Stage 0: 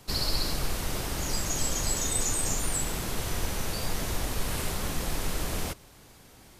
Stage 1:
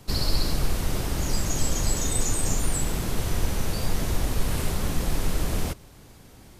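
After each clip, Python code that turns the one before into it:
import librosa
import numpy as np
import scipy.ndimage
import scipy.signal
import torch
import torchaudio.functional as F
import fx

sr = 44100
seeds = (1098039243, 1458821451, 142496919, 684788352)

y = fx.low_shelf(x, sr, hz=410.0, db=7.0)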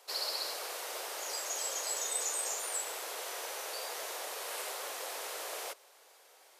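y = scipy.signal.sosfilt(scipy.signal.butter(6, 470.0, 'highpass', fs=sr, output='sos'), x)
y = y * librosa.db_to_amplitude(-5.0)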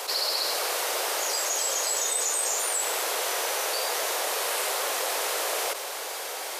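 y = fx.env_flatten(x, sr, amount_pct=70)
y = y * librosa.db_to_amplitude(6.0)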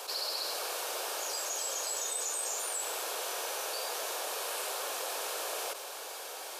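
y = fx.notch(x, sr, hz=2000.0, q=6.5)
y = y * librosa.db_to_amplitude(-8.0)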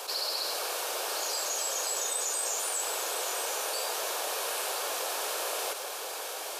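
y = x + 10.0 ** (-8.5 / 20.0) * np.pad(x, (int(1009 * sr / 1000.0), 0))[:len(x)]
y = y * librosa.db_to_amplitude(3.0)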